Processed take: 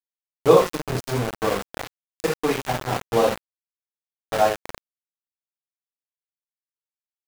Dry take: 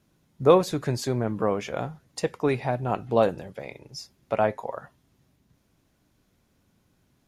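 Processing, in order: transient shaper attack +2 dB, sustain -7 dB; gated-style reverb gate 170 ms falling, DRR -5 dB; small samples zeroed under -18 dBFS; trim -4 dB

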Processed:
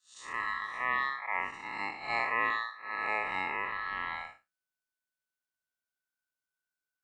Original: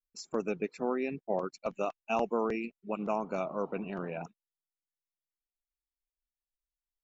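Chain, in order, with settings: spectral blur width 165 ms; ring modulator 1.5 kHz; trim +5.5 dB

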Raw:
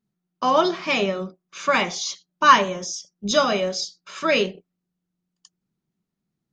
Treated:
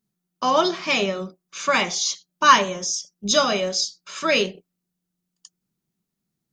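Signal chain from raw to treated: treble shelf 4.8 kHz +10.5 dB; trim -1 dB

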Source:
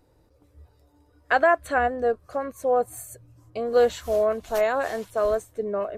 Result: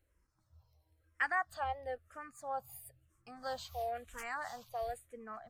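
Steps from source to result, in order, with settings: peaking EQ 330 Hz -14 dB 1.8 oct; speed mistake 44.1 kHz file played as 48 kHz; barber-pole phaser -1 Hz; trim -7.5 dB

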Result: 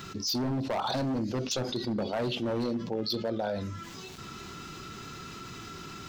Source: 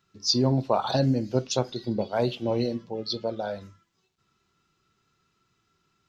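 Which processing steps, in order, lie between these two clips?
peaking EQ 270 Hz +4.5 dB 0.72 oct; overload inside the chain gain 23 dB; level flattener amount 70%; trim -5 dB

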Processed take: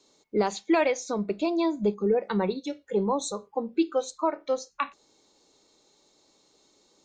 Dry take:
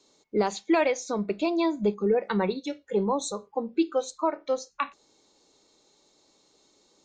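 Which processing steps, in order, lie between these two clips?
1.13–3.05 s: dynamic bell 2 kHz, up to -4 dB, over -44 dBFS, Q 0.84

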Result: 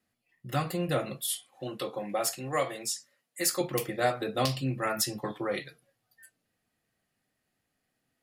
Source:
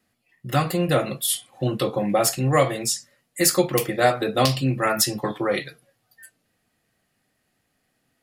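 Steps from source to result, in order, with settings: 1.30–3.61 s: high-pass 410 Hz 6 dB/octave; trim -8.5 dB

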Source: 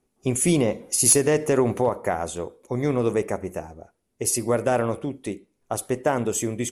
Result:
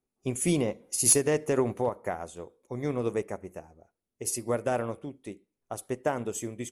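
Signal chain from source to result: upward expansion 1.5:1, over -34 dBFS; trim -3.5 dB

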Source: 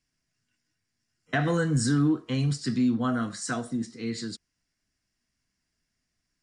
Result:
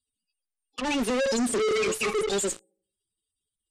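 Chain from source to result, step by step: block-companded coder 3-bit; tilt shelf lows -6.5 dB, about 1.3 kHz; feedback comb 63 Hz, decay 0.85 s, harmonics all, mix 50%; on a send: filtered feedback delay 143 ms, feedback 45%, low-pass 1.3 kHz, level -18.5 dB; on the sum: slow attack 716 ms; speed mistake 45 rpm record played at 78 rpm; spectral gate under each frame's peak -10 dB strong; in parallel at -6.5 dB: fuzz box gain 55 dB, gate -55 dBFS; on the sum: dynamic bell 750 Hz, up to -4 dB, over -31 dBFS, Q 0.78; peak limiter -24.5 dBFS, peak gain reduction 10.5 dB; low-pass 8.5 kHz 24 dB/octave; trim +3 dB

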